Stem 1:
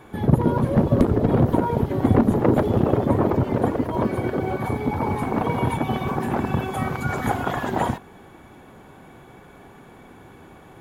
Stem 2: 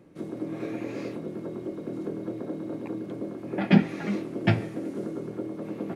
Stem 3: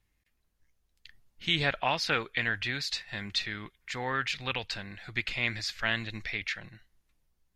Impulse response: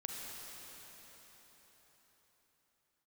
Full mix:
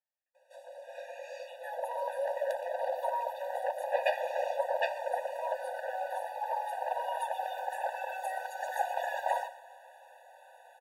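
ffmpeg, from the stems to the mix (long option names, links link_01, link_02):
-filter_complex "[0:a]adelay=1500,volume=-5.5dB,asplit=3[link_01][link_02][link_03];[link_02]volume=-17.5dB[link_04];[link_03]volume=-13.5dB[link_05];[1:a]adelay=350,volume=-1dB[link_06];[2:a]lowpass=1300,acompressor=threshold=-31dB:ratio=6,volume=-9.5dB[link_07];[3:a]atrim=start_sample=2205[link_08];[link_04][link_08]afir=irnorm=-1:irlink=0[link_09];[link_05]aecho=0:1:119:1[link_10];[link_01][link_06][link_07][link_09][link_10]amix=inputs=5:normalize=0,asoftclip=type=tanh:threshold=-9.5dB,afftfilt=real='re*eq(mod(floor(b*sr/1024/490),2),1)':imag='im*eq(mod(floor(b*sr/1024/490),2),1)':win_size=1024:overlap=0.75"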